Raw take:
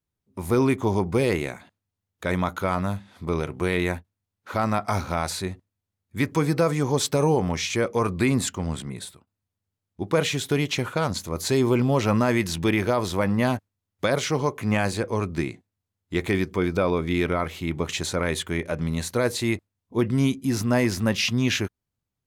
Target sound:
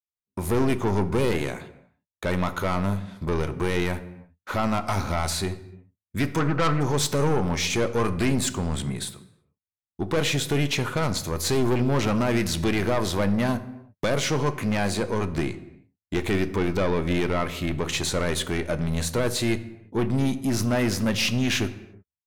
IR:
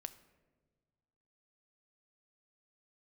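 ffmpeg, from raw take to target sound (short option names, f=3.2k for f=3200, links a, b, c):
-filter_complex "[0:a]agate=range=-33dB:threshold=-43dB:ratio=3:detection=peak,asplit=2[a][b];[b]acompressor=threshold=-33dB:ratio=6,volume=-2dB[c];[a][c]amix=inputs=2:normalize=0,asplit=3[d][e][f];[d]afade=t=out:st=6.39:d=0.02[g];[e]lowpass=f=1.3k:t=q:w=4.3,afade=t=in:st=6.39:d=0.02,afade=t=out:st=6.8:d=0.02[h];[f]afade=t=in:st=6.8:d=0.02[i];[g][h][i]amix=inputs=3:normalize=0,aeval=exprs='(tanh(10*val(0)+0.2)-tanh(0.2))/10':c=same[j];[1:a]atrim=start_sample=2205,afade=t=out:st=0.39:d=0.01,atrim=end_sample=17640,asetrate=41895,aresample=44100[k];[j][k]afir=irnorm=-1:irlink=0,volume=5.5dB"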